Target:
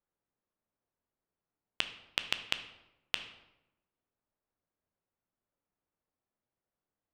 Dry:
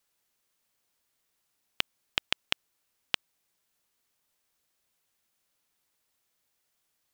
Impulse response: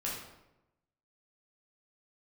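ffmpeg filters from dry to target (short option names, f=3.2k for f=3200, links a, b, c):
-filter_complex "[0:a]adynamicsmooth=sensitivity=6:basefreq=1.1k,asplit=2[a][b];[1:a]atrim=start_sample=2205,lowpass=7.3k[c];[b][c]afir=irnorm=-1:irlink=0,volume=-8dB[d];[a][d]amix=inputs=2:normalize=0,volume=-5dB"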